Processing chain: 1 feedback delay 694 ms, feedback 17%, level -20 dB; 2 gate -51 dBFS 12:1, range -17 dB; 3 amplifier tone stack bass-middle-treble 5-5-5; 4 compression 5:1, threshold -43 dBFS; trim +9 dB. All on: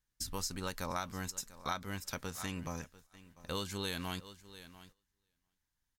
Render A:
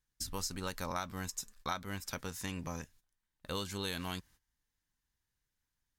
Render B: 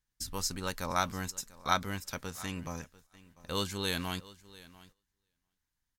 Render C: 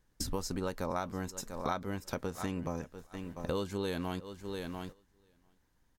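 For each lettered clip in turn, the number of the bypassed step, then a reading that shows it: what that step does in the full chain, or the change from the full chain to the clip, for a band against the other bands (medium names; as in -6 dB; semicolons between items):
1, momentary loudness spread change -9 LU; 4, mean gain reduction 2.5 dB; 3, 500 Hz band +7.0 dB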